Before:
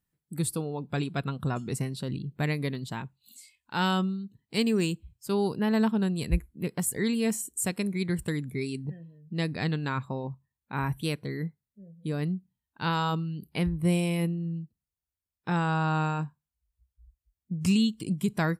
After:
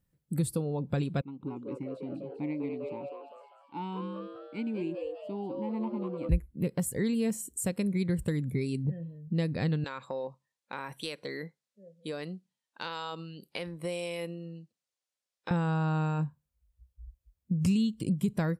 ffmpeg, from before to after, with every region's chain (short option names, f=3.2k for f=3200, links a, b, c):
-filter_complex "[0:a]asettb=1/sr,asplit=3[a][b][c];[a]atrim=end=1.214[d];[b]atrim=start=1.21:end=6.29,asetpts=PTS-STARTPTS,afade=t=in:d=0.004:c=qsin,afade=t=out:st=5.076:d=0.004:c=qsin,asplit=3[e][f][g];[e]bandpass=f=300:t=q:w=8,volume=0dB[h];[f]bandpass=f=870:t=q:w=8,volume=-6dB[i];[g]bandpass=f=2.24k:t=q:w=8,volume=-9dB[j];[h][i][j]amix=inputs=3:normalize=0,asplit=8[k][l][m][n][o][p][q][r];[l]adelay=199,afreqshift=140,volume=-6dB[s];[m]adelay=398,afreqshift=280,volume=-11.5dB[t];[n]adelay=597,afreqshift=420,volume=-17dB[u];[o]adelay=796,afreqshift=560,volume=-22.5dB[v];[p]adelay=995,afreqshift=700,volume=-28.1dB[w];[q]adelay=1194,afreqshift=840,volume=-33.6dB[x];[r]adelay=1393,afreqshift=980,volume=-39.1dB[y];[k][s][t][u][v][w][x][y]amix=inputs=8:normalize=0,atrim=end_sample=224028[z];[c]atrim=start=6.286[aa];[d][z]acrossfade=d=0.004:c1=hsin:c2=qsin[ab];[ab][aa]acrossfade=d=0.004:c1=qsin:c2=hsin,asettb=1/sr,asplit=3[ac][ad][ae];[ac]atrim=end=9.844[af];[ad]atrim=start=9.84:end=15.51,asetpts=PTS-STARTPTS,afade=t=in:d=0.004:c=qsin,afade=t=out:st=5.666:d=0.004:c=qsin,highpass=480,lowpass=6.6k,acompressor=threshold=-37dB:ratio=2.5:attack=3.2:release=140:knee=1:detection=peak,highshelf=f=2.8k:g=9.5[ag];[ae]atrim=start=15.506[ah];[af][ag]acrossfade=d=0.004:c1=hsin:c2=qsin[ai];[ai][ah]acrossfade=d=0.004:c1=qsin:c2=hsin,equalizer=f=530:w=5.2:g=10,acompressor=threshold=-34dB:ratio=2.5,lowshelf=f=280:g=9.5"